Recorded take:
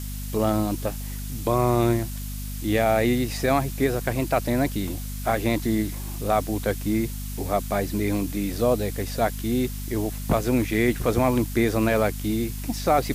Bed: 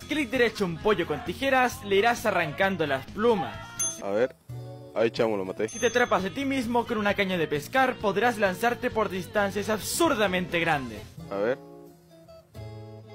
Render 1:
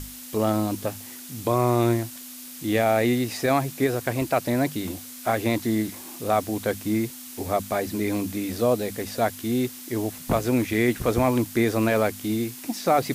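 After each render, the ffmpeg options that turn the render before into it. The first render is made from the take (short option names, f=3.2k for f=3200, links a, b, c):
-af "bandreject=f=50:t=h:w=6,bandreject=f=100:t=h:w=6,bandreject=f=150:t=h:w=6,bandreject=f=200:t=h:w=6"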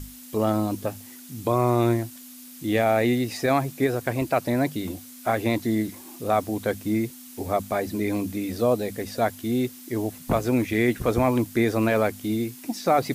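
-af "afftdn=nr=6:nf=-41"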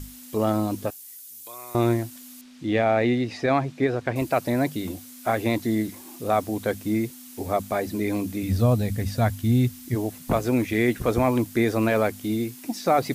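-filter_complex "[0:a]asettb=1/sr,asplit=3[a][b][c];[a]atrim=end=0.904[d];[b]atrim=start=0.9:end=1.75,asetpts=PTS-STARTPTS,afade=t=in:d=0.004:c=qsin,afade=t=out:st=0.846:d=0.004:c=qsin,aderivative[e];[c]atrim=start=1.746[f];[d][e]acrossfade=d=0.004:c1=hsin:c2=qsin[g];[g][f]acrossfade=d=0.004:c1=qsin:c2=hsin,asettb=1/sr,asplit=3[h][i][j];[h]atrim=end=2.414[k];[i]atrim=start=2.41:end=4.16,asetpts=PTS-STARTPTS,afade=t=in:d=0.004:c=qsin,afade=t=out:st=1.746:d=0.004:c=qsin,lowpass=4.2k[l];[j]atrim=start=4.156[m];[k][l]acrossfade=d=0.004:c1=hsin:c2=qsin[n];[n][m]acrossfade=d=0.004:c1=qsin:c2=hsin,asplit=3[o][p][q];[o]afade=t=out:st=8.42:d=0.02[r];[p]asubboost=boost=10:cutoff=120,afade=t=in:st=8.42:d=0.02,afade=t=out:st=9.94:d=0.02[s];[q]afade=t=in:st=9.94:d=0.02[t];[r][s][t]amix=inputs=3:normalize=0"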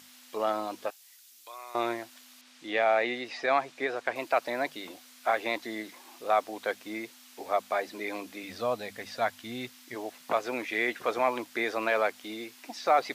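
-filter_complex "[0:a]highpass=670,acrossover=split=5400[a][b];[b]acompressor=threshold=-58dB:ratio=4:attack=1:release=60[c];[a][c]amix=inputs=2:normalize=0"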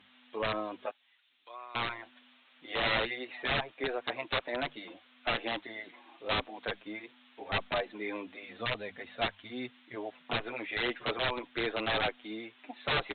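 -filter_complex "[0:a]aresample=8000,aeval=exprs='(mod(10*val(0)+1,2)-1)/10':c=same,aresample=44100,asplit=2[a][b];[b]adelay=7.2,afreqshift=-1.6[c];[a][c]amix=inputs=2:normalize=1"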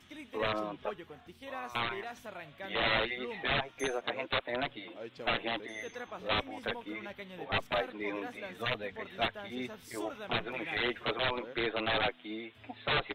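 -filter_complex "[1:a]volume=-20.5dB[a];[0:a][a]amix=inputs=2:normalize=0"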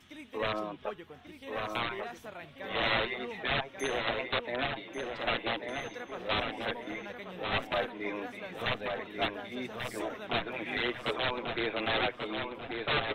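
-filter_complex "[0:a]asplit=2[a][b];[b]adelay=1139,lowpass=f=3.6k:p=1,volume=-4.5dB,asplit=2[c][d];[d]adelay=1139,lowpass=f=3.6k:p=1,volume=0.44,asplit=2[e][f];[f]adelay=1139,lowpass=f=3.6k:p=1,volume=0.44,asplit=2[g][h];[h]adelay=1139,lowpass=f=3.6k:p=1,volume=0.44,asplit=2[i][j];[j]adelay=1139,lowpass=f=3.6k:p=1,volume=0.44[k];[a][c][e][g][i][k]amix=inputs=6:normalize=0"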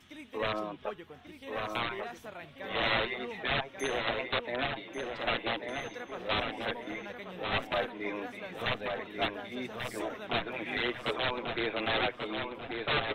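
-af anull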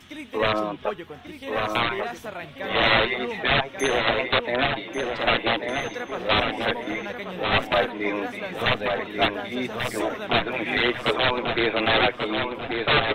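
-af "volume=10dB"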